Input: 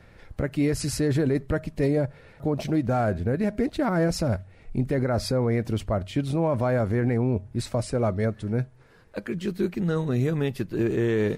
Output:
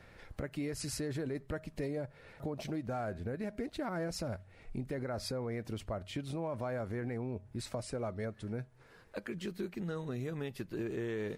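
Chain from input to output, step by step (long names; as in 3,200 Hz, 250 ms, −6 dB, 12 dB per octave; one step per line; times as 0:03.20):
low-shelf EQ 340 Hz −5.5 dB
downward compressor 2.5 to 1, threshold −37 dBFS, peak gain reduction 10 dB
level −2 dB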